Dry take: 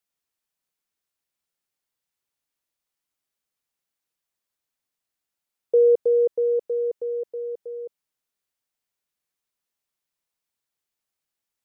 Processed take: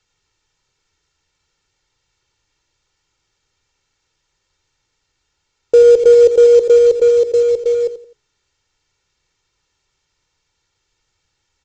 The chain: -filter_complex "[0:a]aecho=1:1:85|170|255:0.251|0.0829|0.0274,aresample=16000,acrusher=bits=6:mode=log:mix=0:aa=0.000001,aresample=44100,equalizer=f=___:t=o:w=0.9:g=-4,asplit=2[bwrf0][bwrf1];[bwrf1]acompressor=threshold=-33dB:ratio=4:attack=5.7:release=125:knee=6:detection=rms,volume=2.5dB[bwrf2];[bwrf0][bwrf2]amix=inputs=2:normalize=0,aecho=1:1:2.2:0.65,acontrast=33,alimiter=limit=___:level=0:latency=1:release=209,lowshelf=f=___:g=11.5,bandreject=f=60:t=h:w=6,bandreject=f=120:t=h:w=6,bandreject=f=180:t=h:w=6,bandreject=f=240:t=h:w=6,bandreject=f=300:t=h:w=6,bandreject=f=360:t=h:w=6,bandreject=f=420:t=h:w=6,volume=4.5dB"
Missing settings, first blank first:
540, -9dB, 220